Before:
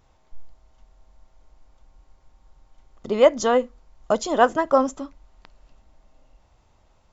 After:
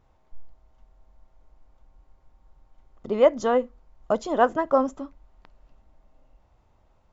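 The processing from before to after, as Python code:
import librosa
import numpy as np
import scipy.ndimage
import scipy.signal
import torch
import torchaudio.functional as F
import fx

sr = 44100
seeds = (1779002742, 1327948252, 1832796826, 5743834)

y = fx.high_shelf(x, sr, hz=3000.0, db=-11.5)
y = y * librosa.db_to_amplitude(-2.0)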